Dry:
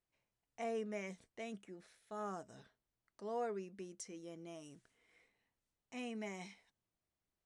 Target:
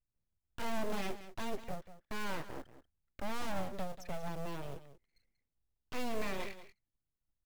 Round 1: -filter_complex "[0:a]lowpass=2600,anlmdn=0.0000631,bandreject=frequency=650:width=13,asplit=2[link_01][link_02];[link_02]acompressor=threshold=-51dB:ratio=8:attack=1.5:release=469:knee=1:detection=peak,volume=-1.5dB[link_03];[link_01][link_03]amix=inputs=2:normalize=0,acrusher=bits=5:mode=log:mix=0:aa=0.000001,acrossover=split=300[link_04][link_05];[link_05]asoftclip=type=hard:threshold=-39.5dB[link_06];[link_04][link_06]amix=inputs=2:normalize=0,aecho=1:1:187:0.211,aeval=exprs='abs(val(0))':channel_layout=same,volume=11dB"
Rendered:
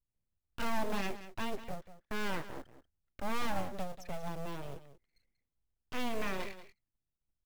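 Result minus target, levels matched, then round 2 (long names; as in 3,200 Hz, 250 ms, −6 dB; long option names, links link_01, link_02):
hard clipping: distortion −6 dB
-filter_complex "[0:a]lowpass=2600,anlmdn=0.0000631,bandreject=frequency=650:width=13,asplit=2[link_01][link_02];[link_02]acompressor=threshold=-51dB:ratio=8:attack=1.5:release=469:knee=1:detection=peak,volume=-1.5dB[link_03];[link_01][link_03]amix=inputs=2:normalize=0,acrusher=bits=5:mode=log:mix=0:aa=0.000001,acrossover=split=300[link_04][link_05];[link_05]asoftclip=type=hard:threshold=-45.5dB[link_06];[link_04][link_06]amix=inputs=2:normalize=0,aecho=1:1:187:0.211,aeval=exprs='abs(val(0))':channel_layout=same,volume=11dB"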